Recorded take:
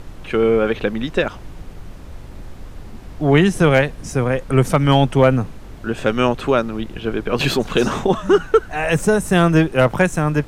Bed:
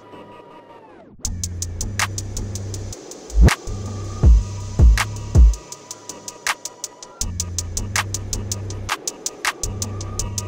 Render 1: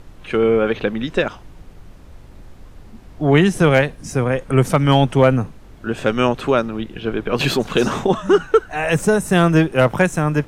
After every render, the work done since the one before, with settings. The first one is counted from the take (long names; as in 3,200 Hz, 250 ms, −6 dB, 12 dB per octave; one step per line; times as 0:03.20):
noise reduction from a noise print 6 dB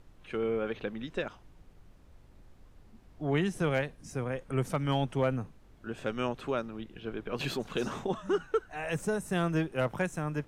level −15.5 dB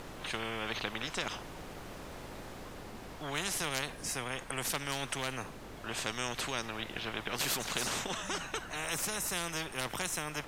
speech leveller within 4 dB 2 s
every bin compressed towards the loudest bin 4 to 1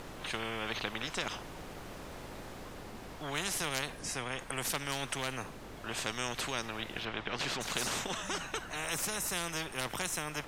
0:03.99–0:04.39: low-pass filter 9,100 Hz
0:07.05–0:07.61: low-pass filter 4,700 Hz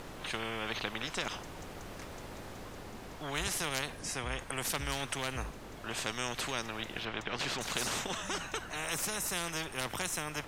mix in bed −31.5 dB